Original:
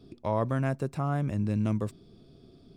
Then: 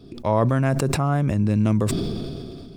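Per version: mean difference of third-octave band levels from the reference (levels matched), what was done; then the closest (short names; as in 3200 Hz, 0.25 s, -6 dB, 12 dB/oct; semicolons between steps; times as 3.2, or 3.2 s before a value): 5.0 dB: sustainer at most 23 dB/s; gain +7.5 dB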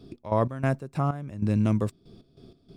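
4.0 dB: step gate "x.x.x.x..xx" 95 bpm -12 dB; gain +4.5 dB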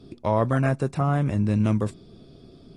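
1.0 dB: gain +6 dB; AAC 32 kbps 32000 Hz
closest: third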